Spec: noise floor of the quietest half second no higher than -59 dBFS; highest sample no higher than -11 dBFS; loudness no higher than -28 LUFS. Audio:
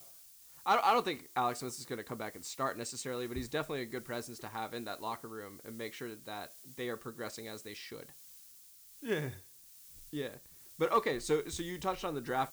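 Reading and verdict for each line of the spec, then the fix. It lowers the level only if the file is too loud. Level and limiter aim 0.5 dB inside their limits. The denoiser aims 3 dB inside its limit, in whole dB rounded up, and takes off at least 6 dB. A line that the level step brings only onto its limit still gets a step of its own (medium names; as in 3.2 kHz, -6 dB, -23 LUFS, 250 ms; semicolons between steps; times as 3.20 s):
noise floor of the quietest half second -57 dBFS: fail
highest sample -18.0 dBFS: pass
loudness -37.0 LUFS: pass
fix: noise reduction 6 dB, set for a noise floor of -57 dBFS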